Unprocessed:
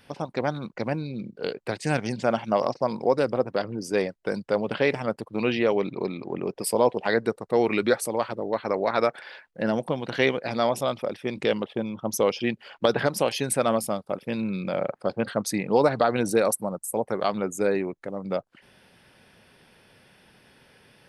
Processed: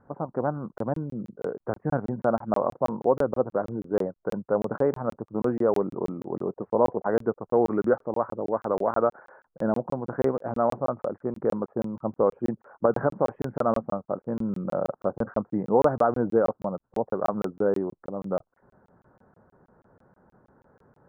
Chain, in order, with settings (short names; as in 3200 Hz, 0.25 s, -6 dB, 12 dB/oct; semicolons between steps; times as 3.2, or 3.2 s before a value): steep low-pass 1400 Hz 48 dB/oct; crackling interface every 0.16 s, samples 1024, zero, from 0.78